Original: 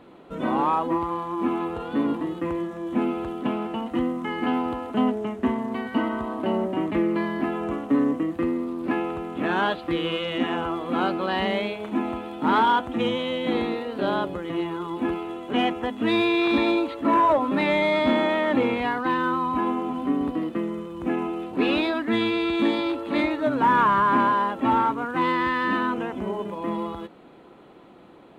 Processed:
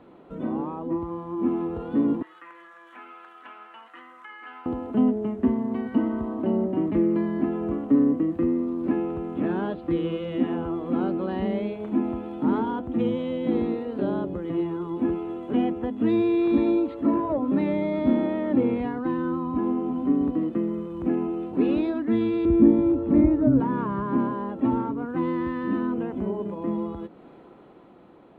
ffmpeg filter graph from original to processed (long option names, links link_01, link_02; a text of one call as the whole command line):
ffmpeg -i in.wav -filter_complex "[0:a]asettb=1/sr,asplit=3[link_01][link_02][link_03];[link_01]atrim=end=2.224[link_04];[link_02]atrim=start=2.22:end=4.66,asetpts=PTS-STARTPTS,afade=type=in:duration=0.004:curve=qsin,afade=type=out:start_time=2.436:duration=0.004:curve=qsin,highpass=frequency=1500:width_type=q:width=2.5,flanger=delay=5.6:depth=1.4:regen=-68:speed=1.9:shape=triangular[link_05];[link_03]atrim=start=4.656[link_06];[link_04][link_05]acrossfade=duration=0.004:curve1=hsin:curve2=qsin[link_07];[link_07][link_06]acrossfade=duration=0.004:curve1=qsin:curve2=hsin,asettb=1/sr,asplit=3[link_08][link_09][link_10];[link_08]atrim=end=22.454[link_11];[link_09]atrim=start=22.45:end=23.6,asetpts=PTS-STARTPTS,afade=type=in:duration=0.004:curve=qsin,afade=type=out:start_time=1.146:duration=0.004:curve=qsin,aemphasis=mode=reproduction:type=riaa,acrossover=split=2600[link_12][link_13];[link_13]acompressor=threshold=-56dB:ratio=4:attack=1:release=60[link_14];[link_12][link_14]amix=inputs=2:normalize=0[link_15];[link_10]atrim=start=23.596[link_16];[link_11][link_15]acrossfade=duration=0.004:curve1=hsin:curve2=qsin[link_17];[link_17][link_16]acrossfade=duration=0.004:curve1=qsin:curve2=hsin,acrossover=split=460[link_18][link_19];[link_19]acompressor=threshold=-49dB:ratio=2[link_20];[link_18][link_20]amix=inputs=2:normalize=0,highshelf=frequency=2500:gain=-10.5,dynaudnorm=framelen=110:gausssize=21:maxgain=4dB,volume=-1dB" out.wav